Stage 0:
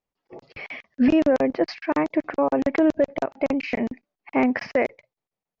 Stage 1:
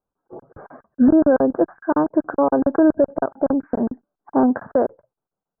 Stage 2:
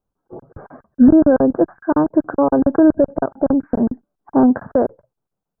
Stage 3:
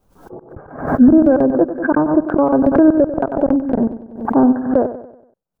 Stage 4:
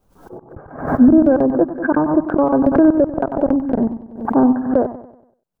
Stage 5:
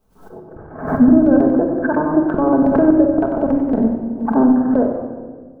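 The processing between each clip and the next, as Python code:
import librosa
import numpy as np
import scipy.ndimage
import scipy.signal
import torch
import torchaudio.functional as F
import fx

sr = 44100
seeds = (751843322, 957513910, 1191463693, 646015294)

y1 = scipy.signal.sosfilt(scipy.signal.cheby1(8, 1.0, 1600.0, 'lowpass', fs=sr, output='sos'), x)
y1 = F.gain(torch.from_numpy(y1), 4.5).numpy()
y2 = fx.low_shelf(y1, sr, hz=230.0, db=10.0)
y3 = fx.transient(y2, sr, attack_db=1, sustain_db=-6)
y3 = fx.echo_feedback(y3, sr, ms=95, feedback_pct=46, wet_db=-12)
y3 = fx.pre_swell(y3, sr, db_per_s=99.0)
y4 = y3 + 10.0 ** (-14.5 / 20.0) * np.pad(y3, (int(96 * sr / 1000.0), 0))[:len(y3)]
y4 = F.gain(torch.from_numpy(y4), -1.0).numpy()
y5 = fx.room_shoebox(y4, sr, seeds[0], volume_m3=1700.0, walls='mixed', distance_m=1.5)
y5 = F.gain(torch.from_numpy(y5), -2.5).numpy()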